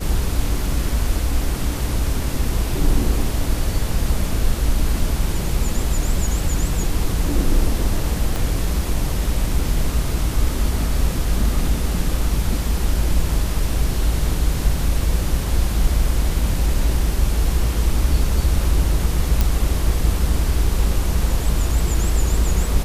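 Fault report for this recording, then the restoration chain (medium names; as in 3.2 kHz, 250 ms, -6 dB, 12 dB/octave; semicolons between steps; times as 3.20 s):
8.36 s: pop
19.41 s: pop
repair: de-click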